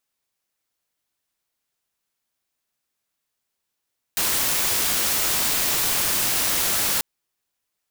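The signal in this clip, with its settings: noise white, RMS -22 dBFS 2.84 s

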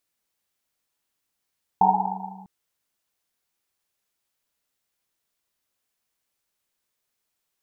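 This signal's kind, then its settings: Risset drum length 0.65 s, pitch 190 Hz, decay 2.32 s, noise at 840 Hz, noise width 190 Hz, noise 75%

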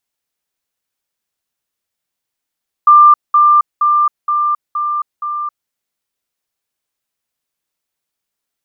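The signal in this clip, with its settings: level ladder 1190 Hz -2.5 dBFS, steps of -3 dB, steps 6, 0.27 s 0.20 s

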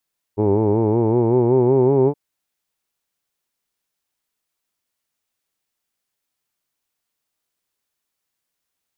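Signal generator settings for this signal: formant vowel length 1.77 s, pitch 101 Hz, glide +5.5 st, F1 390 Hz, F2 890 Hz, F3 2300 Hz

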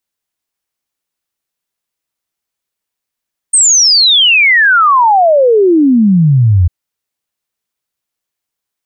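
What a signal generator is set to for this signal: log sweep 8700 Hz -> 83 Hz 3.15 s -4.5 dBFS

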